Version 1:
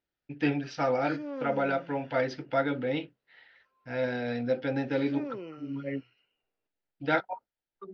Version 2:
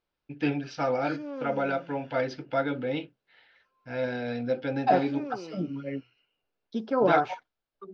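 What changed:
second voice: unmuted; background: remove distance through air 50 m; master: add band-stop 1.9 kHz, Q 10

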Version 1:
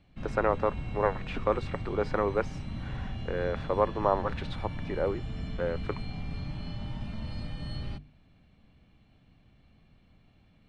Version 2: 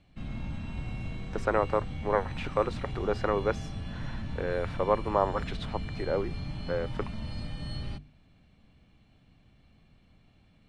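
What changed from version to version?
speech: entry +1.10 s; master: add treble shelf 7.8 kHz +10.5 dB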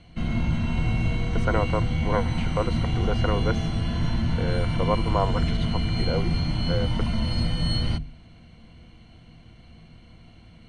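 background +11.0 dB; master: add rippled EQ curve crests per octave 1.9, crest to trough 9 dB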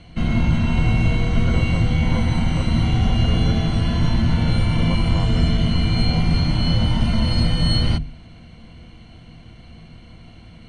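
speech -9.5 dB; background +6.5 dB

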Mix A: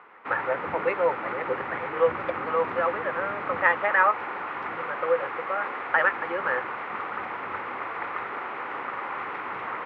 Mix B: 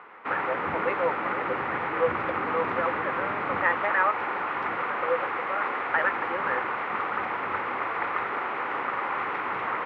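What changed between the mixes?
speech -3.5 dB; background +3.5 dB

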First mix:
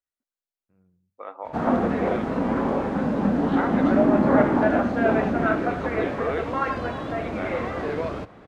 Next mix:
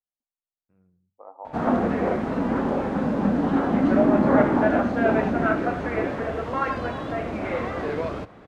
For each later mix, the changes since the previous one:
second voice: add four-pole ladder low-pass 970 Hz, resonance 55%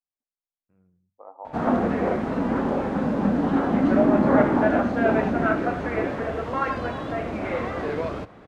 no change

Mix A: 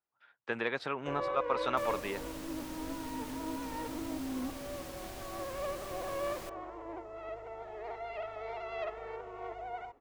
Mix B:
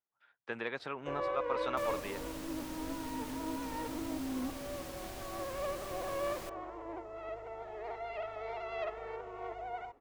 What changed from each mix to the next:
speech -4.5 dB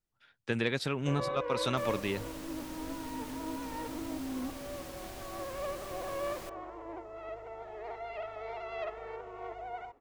speech: remove band-pass filter 1 kHz, Q 1.1

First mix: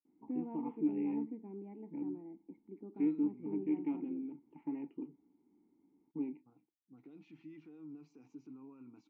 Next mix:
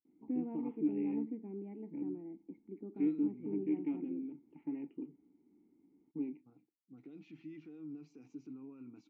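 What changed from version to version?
second voice +3.5 dB; background +3.0 dB; master: add peaking EQ 960 Hz -8.5 dB 0.69 oct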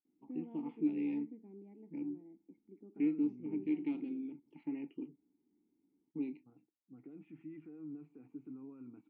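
first voice: remove Gaussian low-pass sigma 3.7 samples; second voice: add Butterworth band-stop 5.2 kHz, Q 0.54; background -9.0 dB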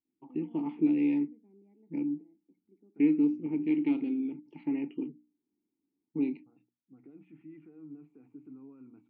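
first voice +9.5 dB; background -6.5 dB; master: add hum notches 60/120/180/240/300 Hz

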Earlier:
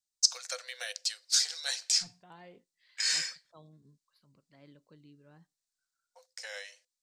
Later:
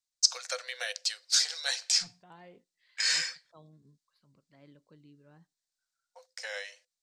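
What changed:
first voice +5.0 dB; master: add treble shelf 5.7 kHz -8.5 dB

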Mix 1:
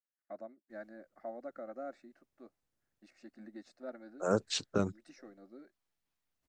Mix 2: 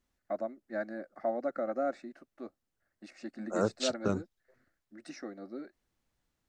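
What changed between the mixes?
first voice +11.0 dB; second voice: entry -0.70 s

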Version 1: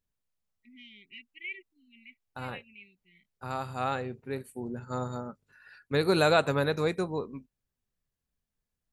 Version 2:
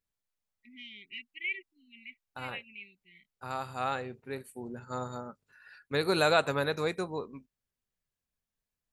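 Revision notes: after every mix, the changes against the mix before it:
first voice +5.0 dB; master: add bass shelf 430 Hz -6.5 dB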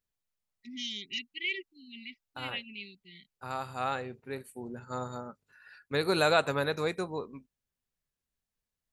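first voice: remove four-pole ladder low-pass 2.6 kHz, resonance 65%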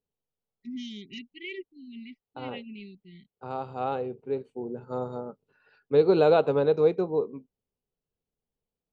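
second voice: add cabinet simulation 180–5300 Hz, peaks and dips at 230 Hz -4 dB, 450 Hz +8 dB, 810 Hz +4 dB, 1.8 kHz -9 dB, 3 kHz +6 dB; master: add tilt shelf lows +9.5 dB, about 820 Hz

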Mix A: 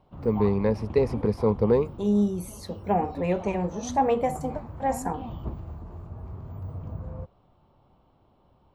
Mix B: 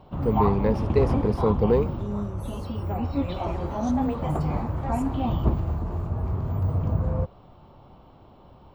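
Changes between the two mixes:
second voice -10.0 dB; background +11.5 dB

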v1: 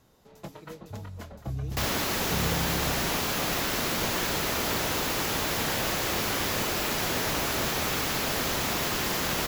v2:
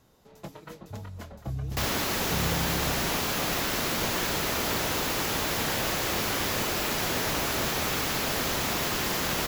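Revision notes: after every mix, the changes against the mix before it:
reverb: off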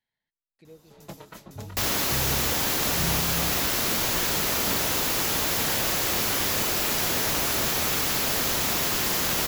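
first sound: entry +0.65 s; master: add treble shelf 4.7 kHz +7.5 dB

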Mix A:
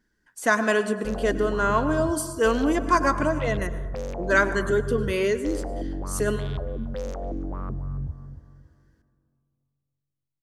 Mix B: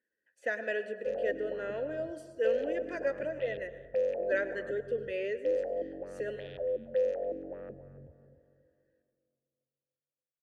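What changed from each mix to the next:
background +7.5 dB; master: add vowel filter e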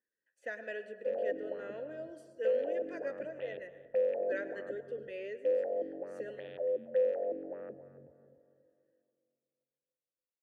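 speech -7.5 dB; background: add band-pass 220–2500 Hz

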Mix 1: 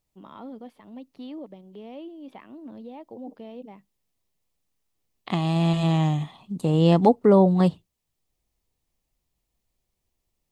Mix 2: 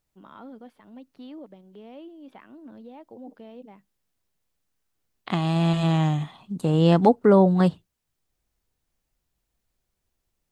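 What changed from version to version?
first voice -3.5 dB; master: add peaking EQ 1.5 kHz +9 dB 0.36 oct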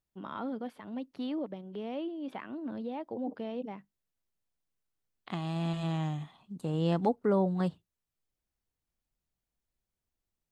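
first voice +6.5 dB; second voice -11.0 dB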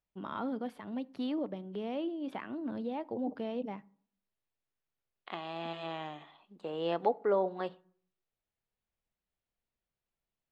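second voice: add Chebyshev band-pass 450–3200 Hz, order 2; reverb: on, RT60 0.55 s

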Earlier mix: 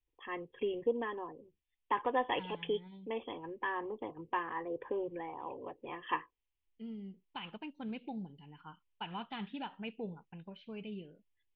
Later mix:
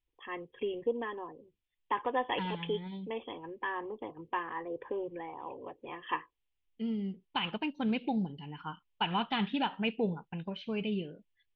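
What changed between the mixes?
second voice +10.0 dB; master: remove distance through air 97 m

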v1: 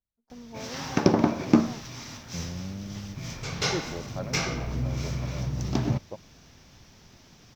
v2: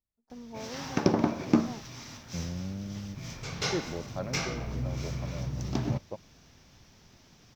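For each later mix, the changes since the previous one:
background -4.0 dB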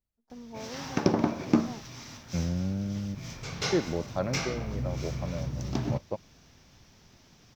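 second voice +6.0 dB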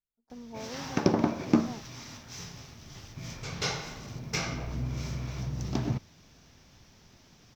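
second voice: muted

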